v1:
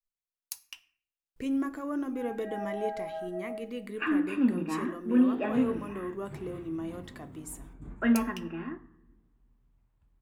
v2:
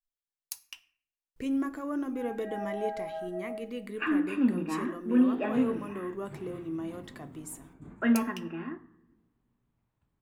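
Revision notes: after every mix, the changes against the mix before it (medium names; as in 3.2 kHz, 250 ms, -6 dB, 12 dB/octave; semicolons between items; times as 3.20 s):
background: add high-pass 110 Hz 12 dB/octave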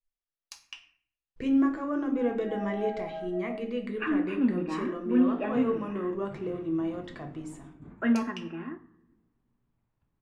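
speech: send +11.5 dB; master: add distance through air 120 m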